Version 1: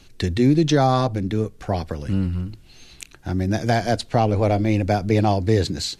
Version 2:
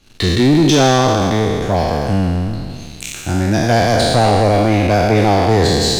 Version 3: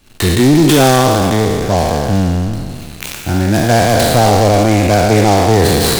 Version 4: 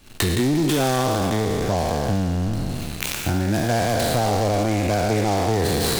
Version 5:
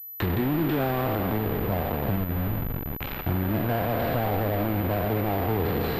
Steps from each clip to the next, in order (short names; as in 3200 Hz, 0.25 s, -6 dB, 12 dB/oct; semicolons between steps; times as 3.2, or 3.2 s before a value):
spectral trails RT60 2.18 s; sample leveller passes 2; gain -2 dB
noise-modulated delay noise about 4600 Hz, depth 0.038 ms; gain +2.5 dB
compressor 4:1, threshold -20 dBFS, peak gain reduction 11.5 dB
level-crossing sampler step -20.5 dBFS; air absorption 320 m; pulse-width modulation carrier 12000 Hz; gain -3.5 dB